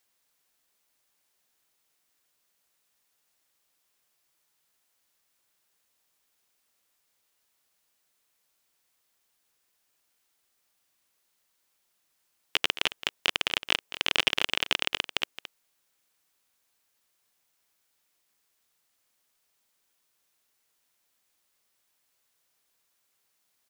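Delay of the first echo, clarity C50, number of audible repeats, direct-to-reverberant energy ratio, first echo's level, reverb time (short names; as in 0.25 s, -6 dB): 0.219 s, none, 1, none, -14.0 dB, none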